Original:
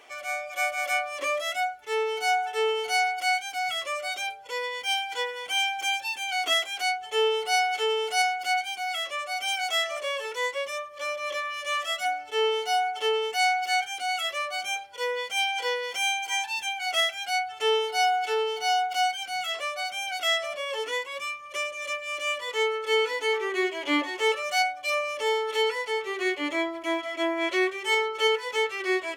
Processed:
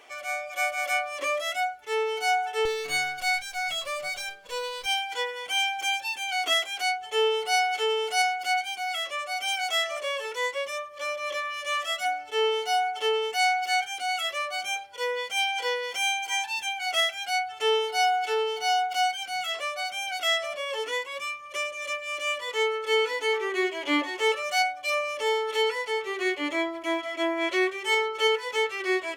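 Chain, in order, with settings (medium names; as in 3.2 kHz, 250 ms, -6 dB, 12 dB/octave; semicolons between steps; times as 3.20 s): 2.65–4.86 s: comb filter that takes the minimum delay 1.8 ms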